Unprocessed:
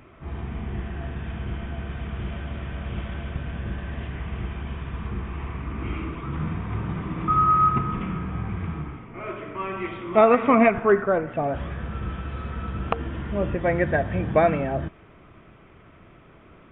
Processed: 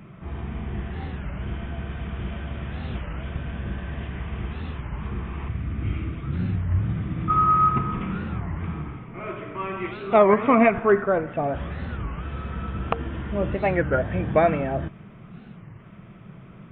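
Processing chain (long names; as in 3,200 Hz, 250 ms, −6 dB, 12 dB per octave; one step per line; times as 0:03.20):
0:05.48–0:07.30: graphic EQ with 15 bands 100 Hz +9 dB, 400 Hz −5 dB, 1,000 Hz −11 dB, 2,500 Hz −3 dB
noise in a band 110–210 Hz −45 dBFS
wow of a warped record 33 1/3 rpm, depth 250 cents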